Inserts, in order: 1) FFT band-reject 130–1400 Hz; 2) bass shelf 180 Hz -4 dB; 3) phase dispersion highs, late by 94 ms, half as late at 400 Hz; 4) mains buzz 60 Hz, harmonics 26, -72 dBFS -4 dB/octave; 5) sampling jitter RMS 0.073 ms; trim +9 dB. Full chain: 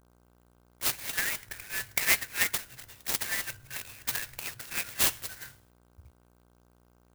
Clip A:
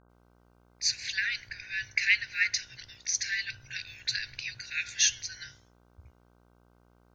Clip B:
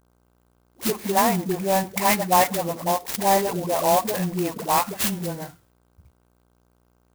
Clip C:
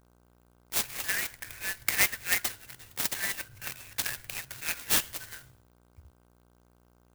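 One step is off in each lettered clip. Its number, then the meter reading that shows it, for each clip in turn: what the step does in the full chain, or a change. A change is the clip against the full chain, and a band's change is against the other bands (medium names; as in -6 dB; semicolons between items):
5, 125 Hz band -7.0 dB; 1, 2 kHz band -19.5 dB; 3, crest factor change +2.0 dB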